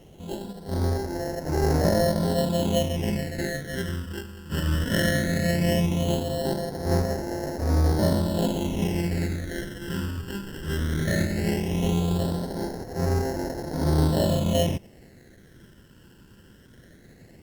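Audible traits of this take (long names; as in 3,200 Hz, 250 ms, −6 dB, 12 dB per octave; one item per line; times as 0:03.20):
aliases and images of a low sample rate 1,200 Hz, jitter 0%
phaser sweep stages 12, 0.17 Hz, lowest notch 690–3,100 Hz
a quantiser's noise floor 10 bits, dither none
Opus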